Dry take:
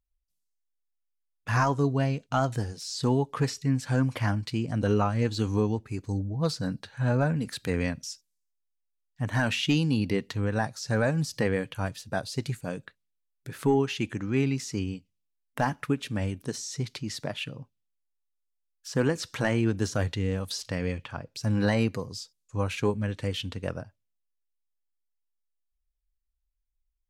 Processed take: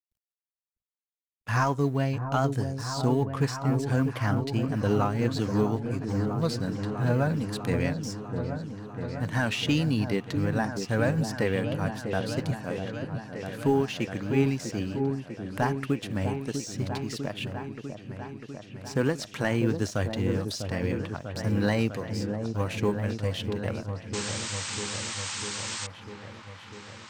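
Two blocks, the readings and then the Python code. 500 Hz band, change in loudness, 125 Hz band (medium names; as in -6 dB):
+1.0 dB, 0.0 dB, +0.5 dB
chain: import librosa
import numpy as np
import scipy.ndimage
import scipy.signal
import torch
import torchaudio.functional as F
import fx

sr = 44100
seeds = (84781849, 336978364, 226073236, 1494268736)

y = fx.law_mismatch(x, sr, coded='A')
y = fx.spec_paint(y, sr, seeds[0], shape='noise', start_s=24.13, length_s=1.74, low_hz=770.0, high_hz=8700.0, level_db=-35.0)
y = fx.echo_opening(y, sr, ms=648, hz=750, octaves=1, feedback_pct=70, wet_db=-6)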